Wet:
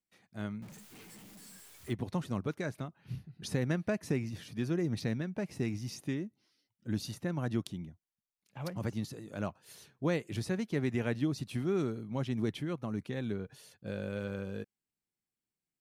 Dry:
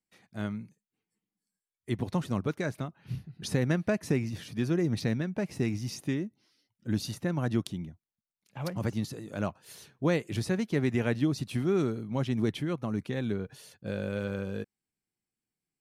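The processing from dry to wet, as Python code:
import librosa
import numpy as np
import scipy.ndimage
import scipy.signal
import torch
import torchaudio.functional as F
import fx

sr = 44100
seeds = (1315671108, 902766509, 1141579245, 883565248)

y = fx.zero_step(x, sr, step_db=-41.0, at=(0.62, 1.93))
y = y * 10.0 ** (-4.5 / 20.0)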